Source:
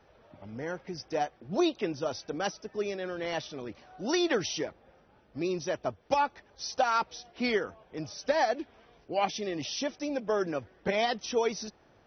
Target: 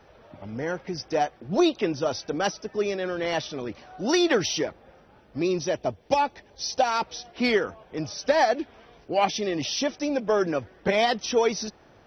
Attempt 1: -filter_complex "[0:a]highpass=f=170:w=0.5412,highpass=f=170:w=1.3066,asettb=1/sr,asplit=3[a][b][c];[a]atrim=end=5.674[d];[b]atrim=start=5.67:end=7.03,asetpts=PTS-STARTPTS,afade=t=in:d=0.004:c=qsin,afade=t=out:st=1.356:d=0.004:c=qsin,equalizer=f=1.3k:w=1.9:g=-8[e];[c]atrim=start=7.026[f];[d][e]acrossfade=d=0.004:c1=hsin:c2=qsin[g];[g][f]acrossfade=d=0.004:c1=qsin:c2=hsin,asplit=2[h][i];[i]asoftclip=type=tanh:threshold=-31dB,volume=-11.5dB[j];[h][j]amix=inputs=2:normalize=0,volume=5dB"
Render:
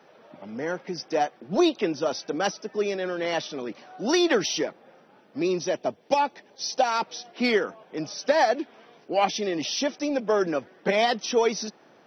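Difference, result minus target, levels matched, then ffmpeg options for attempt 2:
125 Hz band -4.0 dB
-filter_complex "[0:a]asettb=1/sr,asplit=3[a][b][c];[a]atrim=end=5.674[d];[b]atrim=start=5.67:end=7.03,asetpts=PTS-STARTPTS,afade=t=in:d=0.004:c=qsin,afade=t=out:st=1.356:d=0.004:c=qsin,equalizer=f=1.3k:w=1.9:g=-8[e];[c]atrim=start=7.026[f];[d][e]acrossfade=d=0.004:c1=hsin:c2=qsin[g];[g][f]acrossfade=d=0.004:c1=qsin:c2=hsin,asplit=2[h][i];[i]asoftclip=type=tanh:threshold=-31dB,volume=-11.5dB[j];[h][j]amix=inputs=2:normalize=0,volume=5dB"

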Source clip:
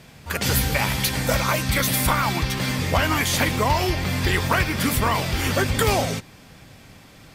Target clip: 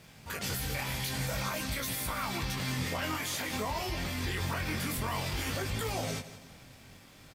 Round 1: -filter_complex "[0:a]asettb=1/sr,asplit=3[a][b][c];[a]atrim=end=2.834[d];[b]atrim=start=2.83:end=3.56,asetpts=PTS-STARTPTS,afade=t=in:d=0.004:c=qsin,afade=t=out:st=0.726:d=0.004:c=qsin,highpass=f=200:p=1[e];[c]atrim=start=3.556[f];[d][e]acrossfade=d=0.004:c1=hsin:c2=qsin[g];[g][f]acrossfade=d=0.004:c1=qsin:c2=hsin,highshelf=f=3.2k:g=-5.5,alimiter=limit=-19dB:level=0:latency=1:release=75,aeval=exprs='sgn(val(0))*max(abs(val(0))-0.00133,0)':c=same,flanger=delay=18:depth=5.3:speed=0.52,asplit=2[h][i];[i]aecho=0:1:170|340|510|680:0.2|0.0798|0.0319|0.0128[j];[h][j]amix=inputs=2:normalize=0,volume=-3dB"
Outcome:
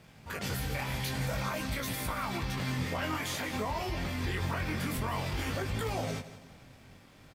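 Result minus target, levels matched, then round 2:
8000 Hz band -4.0 dB
-filter_complex "[0:a]asettb=1/sr,asplit=3[a][b][c];[a]atrim=end=2.834[d];[b]atrim=start=2.83:end=3.56,asetpts=PTS-STARTPTS,afade=t=in:d=0.004:c=qsin,afade=t=out:st=0.726:d=0.004:c=qsin,highpass=f=200:p=1[e];[c]atrim=start=3.556[f];[d][e]acrossfade=d=0.004:c1=hsin:c2=qsin[g];[g][f]acrossfade=d=0.004:c1=qsin:c2=hsin,highshelf=f=3.2k:g=3,alimiter=limit=-19dB:level=0:latency=1:release=75,aeval=exprs='sgn(val(0))*max(abs(val(0))-0.00133,0)':c=same,flanger=delay=18:depth=5.3:speed=0.52,asplit=2[h][i];[i]aecho=0:1:170|340|510|680:0.2|0.0798|0.0319|0.0128[j];[h][j]amix=inputs=2:normalize=0,volume=-3dB"

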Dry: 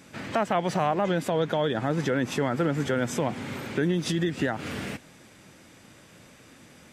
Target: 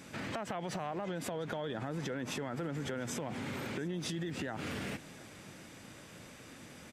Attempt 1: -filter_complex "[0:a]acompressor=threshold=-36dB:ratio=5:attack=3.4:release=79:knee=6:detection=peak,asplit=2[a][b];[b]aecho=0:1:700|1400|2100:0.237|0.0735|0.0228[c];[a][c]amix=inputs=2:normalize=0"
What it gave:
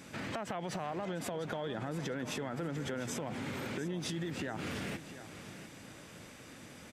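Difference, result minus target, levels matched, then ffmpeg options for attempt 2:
echo-to-direct +8.5 dB
-filter_complex "[0:a]acompressor=threshold=-36dB:ratio=5:attack=3.4:release=79:knee=6:detection=peak,asplit=2[a][b];[b]aecho=0:1:700|1400:0.0891|0.0276[c];[a][c]amix=inputs=2:normalize=0"

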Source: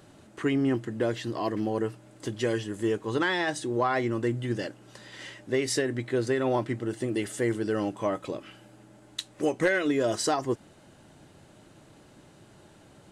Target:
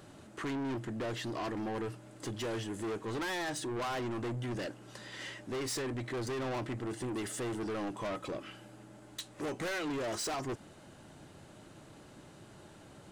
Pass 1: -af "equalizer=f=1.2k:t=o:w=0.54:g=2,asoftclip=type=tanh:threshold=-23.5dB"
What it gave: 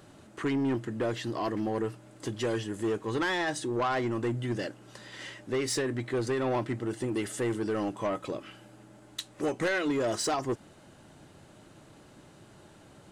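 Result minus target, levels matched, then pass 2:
soft clip: distortion -8 dB
-af "equalizer=f=1.2k:t=o:w=0.54:g=2,asoftclip=type=tanh:threshold=-34dB"

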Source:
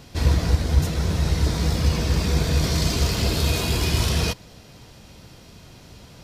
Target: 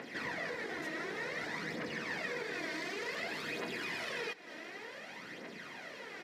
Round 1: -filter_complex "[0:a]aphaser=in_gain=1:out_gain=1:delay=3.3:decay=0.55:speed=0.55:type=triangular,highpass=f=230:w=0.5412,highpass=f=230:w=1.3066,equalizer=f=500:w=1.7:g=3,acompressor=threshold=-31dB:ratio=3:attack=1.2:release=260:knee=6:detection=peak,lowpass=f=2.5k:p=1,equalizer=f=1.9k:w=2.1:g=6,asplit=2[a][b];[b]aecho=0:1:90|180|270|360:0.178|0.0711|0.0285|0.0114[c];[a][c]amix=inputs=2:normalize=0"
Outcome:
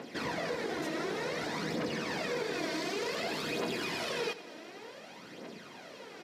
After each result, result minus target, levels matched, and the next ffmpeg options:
compressor: peak gain reduction -7.5 dB; 2000 Hz band -5.5 dB; echo-to-direct +7.5 dB
-filter_complex "[0:a]aphaser=in_gain=1:out_gain=1:delay=3.3:decay=0.55:speed=0.55:type=triangular,highpass=f=230:w=0.5412,highpass=f=230:w=1.3066,equalizer=f=500:w=1.7:g=3,acompressor=threshold=-42dB:ratio=3:attack=1.2:release=260:knee=6:detection=peak,lowpass=f=2.5k:p=1,equalizer=f=1.9k:w=2.1:g=6,asplit=2[a][b];[b]aecho=0:1:90|180|270|360:0.178|0.0711|0.0285|0.0114[c];[a][c]amix=inputs=2:normalize=0"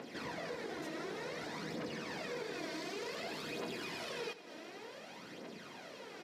echo-to-direct +7.5 dB; 2000 Hz band -4.0 dB
-filter_complex "[0:a]aphaser=in_gain=1:out_gain=1:delay=3.3:decay=0.55:speed=0.55:type=triangular,highpass=f=230:w=0.5412,highpass=f=230:w=1.3066,equalizer=f=500:w=1.7:g=3,acompressor=threshold=-42dB:ratio=3:attack=1.2:release=260:knee=6:detection=peak,lowpass=f=2.5k:p=1,equalizer=f=1.9k:w=2.1:g=6,asplit=2[a][b];[b]aecho=0:1:90|180|270:0.075|0.03|0.012[c];[a][c]amix=inputs=2:normalize=0"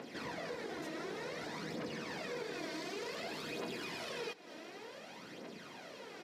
2000 Hz band -4.0 dB
-filter_complex "[0:a]aphaser=in_gain=1:out_gain=1:delay=3.3:decay=0.55:speed=0.55:type=triangular,highpass=f=230:w=0.5412,highpass=f=230:w=1.3066,equalizer=f=500:w=1.7:g=3,acompressor=threshold=-42dB:ratio=3:attack=1.2:release=260:knee=6:detection=peak,lowpass=f=2.5k:p=1,equalizer=f=1.9k:w=2.1:g=16.5,asplit=2[a][b];[b]aecho=0:1:90|180|270:0.075|0.03|0.012[c];[a][c]amix=inputs=2:normalize=0"

